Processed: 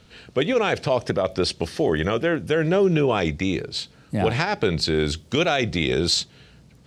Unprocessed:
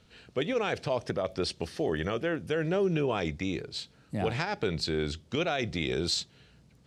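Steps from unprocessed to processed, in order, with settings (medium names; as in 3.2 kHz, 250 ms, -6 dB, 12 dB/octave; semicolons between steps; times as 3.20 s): 4.94–5.57 s: treble shelf 8.8 kHz -> 5.9 kHz +8.5 dB; trim +8.5 dB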